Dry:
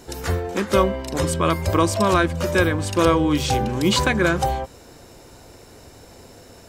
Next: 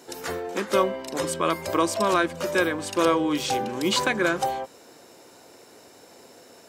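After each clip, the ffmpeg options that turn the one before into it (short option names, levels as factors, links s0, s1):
-af "highpass=260,volume=0.708"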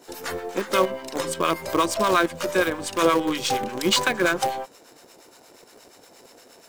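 -filter_complex "[0:a]acrossover=split=840[s0][s1];[s0]aeval=exprs='val(0)*(1-0.7/2+0.7/2*cos(2*PI*8.5*n/s))':c=same[s2];[s1]aeval=exprs='val(0)*(1-0.7/2-0.7/2*cos(2*PI*8.5*n/s))':c=same[s3];[s2][s3]amix=inputs=2:normalize=0,lowshelf=f=450:g=-3.5,asplit=2[s4][s5];[s5]acrusher=bits=5:dc=4:mix=0:aa=0.000001,volume=0.398[s6];[s4][s6]amix=inputs=2:normalize=0,volume=1.41"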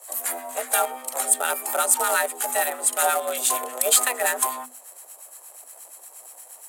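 -af "lowpass=10000,aexciter=amount=14.9:drive=6.2:freq=7700,afreqshift=250,volume=0.668"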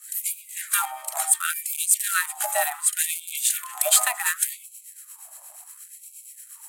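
-af "afftfilt=real='re*gte(b*sr/1024,550*pow(2200/550,0.5+0.5*sin(2*PI*0.69*pts/sr)))':imag='im*gte(b*sr/1024,550*pow(2200/550,0.5+0.5*sin(2*PI*0.69*pts/sr)))':win_size=1024:overlap=0.75"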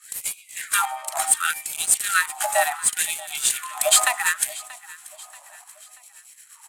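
-af "adynamicsmooth=sensitivity=7.5:basefreq=5900,aecho=1:1:633|1266|1899:0.1|0.046|0.0212,volume=1.68"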